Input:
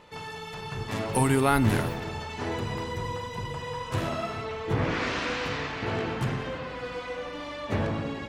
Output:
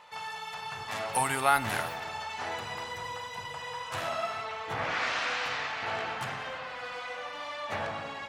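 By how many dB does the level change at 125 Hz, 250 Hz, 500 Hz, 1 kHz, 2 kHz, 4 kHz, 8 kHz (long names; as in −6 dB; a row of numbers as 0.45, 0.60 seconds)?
−15.5, −15.5, −6.5, +0.5, +1.0, 0.0, 0.0 decibels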